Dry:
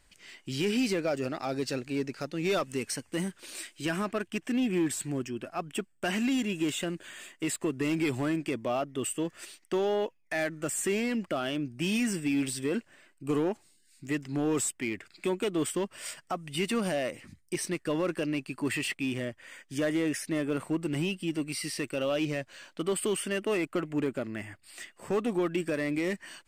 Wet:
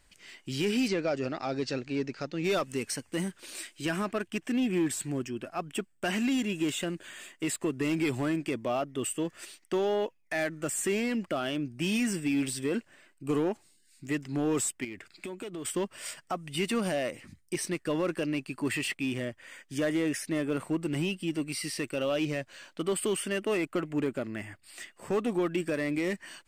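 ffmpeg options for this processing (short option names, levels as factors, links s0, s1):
-filter_complex "[0:a]asettb=1/sr,asplit=3[s0][s1][s2];[s0]atrim=end=0.884[s3];[s1]atrim=start=0.88:end=2.44,asetpts=PTS-STARTPTS,afade=t=in:d=0.004:c=qsin,afade=t=out:st=1.556:d=0.004:c=qsin,lowpass=f=6600:w=0.5412,lowpass=f=6600:w=1.3066[s4];[s2]atrim=start=2.436[s5];[s3][s4]acrossfade=d=0.004:c1=hsin:c2=qsin[s6];[s6][s5]acrossfade=d=0.004:c1=qsin:c2=hsin,asettb=1/sr,asplit=3[s7][s8][s9];[s7]atrim=end=14.844[s10];[s8]atrim=start=14.84:end=15.65,asetpts=PTS-STARTPTS,afade=t=in:d=0.004:c=qsin,afade=t=out:st=0.806:d=0.004:c=qsin,acompressor=threshold=0.0178:ratio=10:attack=3.2:release=140:knee=1:detection=peak[s11];[s9]atrim=start=15.646[s12];[s10][s11]acrossfade=d=0.004:c1=hsin:c2=qsin[s13];[s13][s12]acrossfade=d=0.004:c1=qsin:c2=hsin"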